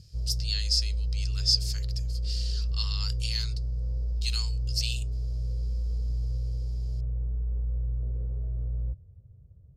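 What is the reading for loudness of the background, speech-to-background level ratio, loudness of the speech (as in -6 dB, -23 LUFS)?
-32.5 LUFS, 1.5 dB, -31.0 LUFS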